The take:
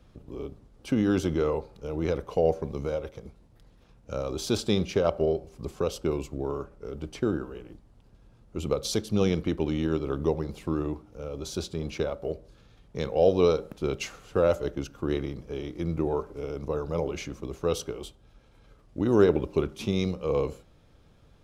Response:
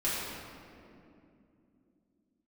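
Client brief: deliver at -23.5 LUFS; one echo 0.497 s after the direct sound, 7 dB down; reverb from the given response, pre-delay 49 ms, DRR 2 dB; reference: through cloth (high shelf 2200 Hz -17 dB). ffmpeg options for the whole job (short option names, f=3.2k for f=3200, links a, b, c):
-filter_complex "[0:a]aecho=1:1:497:0.447,asplit=2[a][b];[1:a]atrim=start_sample=2205,adelay=49[c];[b][c]afir=irnorm=-1:irlink=0,volume=-10.5dB[d];[a][d]amix=inputs=2:normalize=0,highshelf=f=2.2k:g=-17,volume=3dB"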